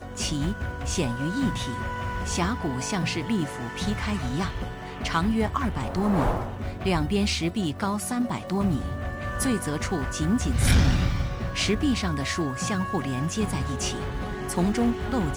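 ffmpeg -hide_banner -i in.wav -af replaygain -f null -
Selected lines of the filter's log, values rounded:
track_gain = +8.0 dB
track_peak = 0.190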